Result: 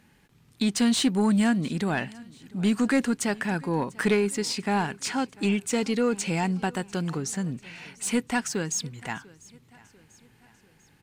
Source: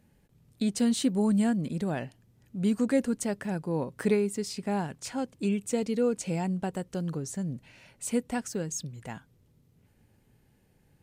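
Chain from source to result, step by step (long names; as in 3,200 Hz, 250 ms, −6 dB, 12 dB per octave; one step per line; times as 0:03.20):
parametric band 560 Hz −9.5 dB 0.82 octaves
mid-hump overdrive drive 15 dB, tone 3,700 Hz, clips at −16 dBFS
on a send: repeating echo 694 ms, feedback 51%, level −23 dB
on the sum: level +4 dB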